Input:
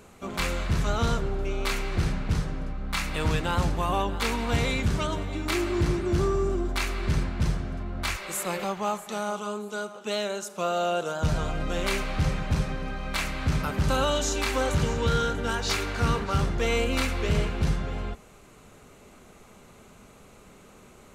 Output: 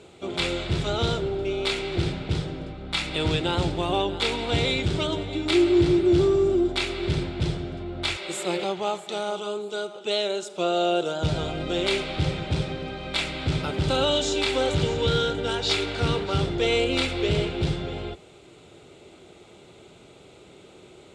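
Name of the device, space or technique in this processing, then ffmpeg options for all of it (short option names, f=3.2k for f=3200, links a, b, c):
car door speaker: -af "highpass=87,equalizer=f=220:t=q:w=4:g=-10,equalizer=f=350:t=q:w=4:g=8,equalizer=f=1.1k:t=q:w=4:g=-10,equalizer=f=1.7k:t=q:w=4:g=-7,equalizer=f=3.5k:t=q:w=4:g=8,equalizer=f=6.2k:t=q:w=4:g=-8,lowpass=f=8.1k:w=0.5412,lowpass=f=8.1k:w=1.3066,volume=3dB"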